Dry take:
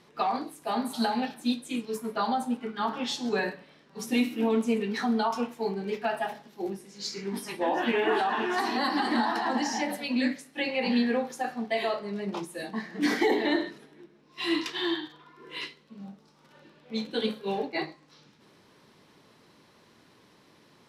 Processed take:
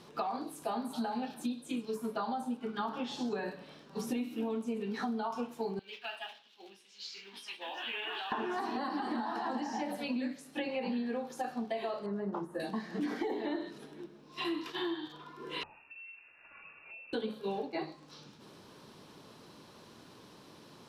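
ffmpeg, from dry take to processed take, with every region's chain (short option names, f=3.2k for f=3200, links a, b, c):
-filter_complex "[0:a]asettb=1/sr,asplit=3[a][b][c];[a]atrim=end=5.794[d];[b]atrim=start=5.79:end=8.32,asetpts=PTS-STARTPTS,afade=t=in:d=0.004:c=qsin,afade=t=out:st=2.526:d=0.004:c=qsin,bandpass=f=3k:t=q:w=2.6,acrusher=bits=9:mode=log:mix=0:aa=0.000001[e];[c]atrim=start=8.316[f];[d][e]acrossfade=d=0.004:c1=hsin:c2=qsin[g];[g][f]acrossfade=d=0.004:c1=qsin:c2=hsin,asettb=1/sr,asplit=3[h][i][j];[h]atrim=end=12.064[k];[i]atrim=start=12.06:end=12.6,asetpts=PTS-STARTPTS,afade=t=in:d=0.004:c=qsin,afade=t=out:st=0.536:d=0.004:c=qsin,bandreject=f=2.4k:w=5.4,acrossover=split=2900[l][m];[m]acompressor=threshold=-54dB:ratio=4:attack=1:release=60[n];[l][n]amix=inputs=2:normalize=0,highshelf=f=2.2k:t=q:w=1.5:g=-11.5[o];[j]atrim=start=12.596[p];[k][o]acrossfade=d=0.004:c1=hsin:c2=qsin[q];[q][p]acrossfade=d=0.004:c1=qsin:c2=hsin,asettb=1/sr,asplit=3[r][s][t];[r]atrim=end=14.444[u];[s]atrim=start=14.44:end=14.93,asetpts=PTS-STARTPTS,afade=t=in:d=0.004:c=qsin,afade=t=out:st=0.486:d=0.004:c=qsin,equalizer=f=12k:w=2.7:g=11,agate=range=-33dB:threshold=-38dB:ratio=3:release=100:detection=peak[v];[t]atrim=start=14.926[w];[u][v]acrossfade=d=0.004:c1=hsin:c2=qsin[x];[x][w]acrossfade=d=0.004:c1=qsin:c2=hsin,asettb=1/sr,asplit=3[y][z][aa];[y]atrim=end=15.634[ab];[z]atrim=start=15.63:end=17.13,asetpts=PTS-STARTPTS,afade=t=in:d=0.004:c=qsin,afade=t=out:st=1.496:d=0.004:c=qsin,acompressor=threshold=-49dB:ratio=10:attack=3.2:release=140:knee=1:detection=peak,lowpass=f=2.5k:t=q:w=0.5098,lowpass=f=2.5k:t=q:w=0.6013,lowpass=f=2.5k:t=q:w=0.9,lowpass=f=2.5k:t=q:w=2.563,afreqshift=-2900[ac];[aa]atrim=start=17.126[ad];[ab][ac]acrossfade=d=0.004:c1=hsin:c2=qsin[ae];[ae][ad]acrossfade=d=0.004:c1=qsin:c2=hsin,acrossover=split=2600[af][ag];[ag]acompressor=threshold=-46dB:ratio=4:attack=1:release=60[ah];[af][ah]amix=inputs=2:normalize=0,equalizer=f=2k:t=o:w=0.48:g=-7.5,acompressor=threshold=-38dB:ratio=6,volume=4.5dB"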